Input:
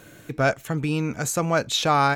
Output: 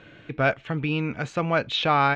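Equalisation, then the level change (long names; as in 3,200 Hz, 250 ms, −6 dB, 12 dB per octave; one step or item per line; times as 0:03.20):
transistor ladder low-pass 3,600 Hz, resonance 40%
+6.5 dB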